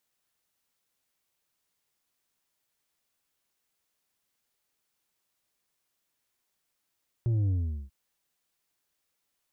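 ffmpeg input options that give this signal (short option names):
-f lavfi -i "aevalsrc='0.0631*clip((0.64-t)/0.41,0,1)*tanh(1.88*sin(2*PI*120*0.64/log(65/120)*(exp(log(65/120)*t/0.64)-1)))/tanh(1.88)':d=0.64:s=44100"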